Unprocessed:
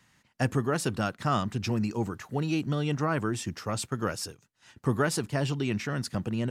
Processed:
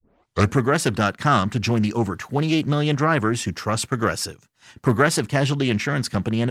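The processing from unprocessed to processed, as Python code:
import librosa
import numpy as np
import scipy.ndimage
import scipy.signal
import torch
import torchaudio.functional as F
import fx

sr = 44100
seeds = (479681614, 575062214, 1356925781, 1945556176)

y = fx.tape_start_head(x, sr, length_s=0.55)
y = fx.dynamic_eq(y, sr, hz=1900.0, q=0.77, threshold_db=-45.0, ratio=4.0, max_db=3)
y = fx.doppler_dist(y, sr, depth_ms=0.27)
y = y * 10.0 ** (8.0 / 20.0)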